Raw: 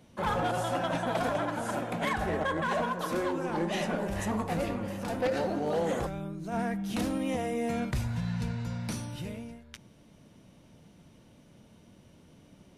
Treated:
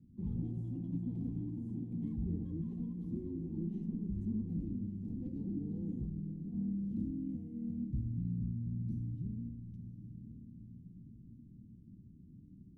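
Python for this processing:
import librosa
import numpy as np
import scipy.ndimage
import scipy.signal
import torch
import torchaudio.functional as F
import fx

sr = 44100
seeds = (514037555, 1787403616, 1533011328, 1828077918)

p1 = scipy.signal.sosfilt(scipy.signal.cheby2(4, 40, 550.0, 'lowpass', fs=sr, output='sos'), x)
p2 = fx.rider(p1, sr, range_db=10, speed_s=2.0)
p3 = p2 + fx.echo_diffused(p2, sr, ms=1009, feedback_pct=46, wet_db=-11.0, dry=0)
y = p3 * librosa.db_to_amplitude(-3.0)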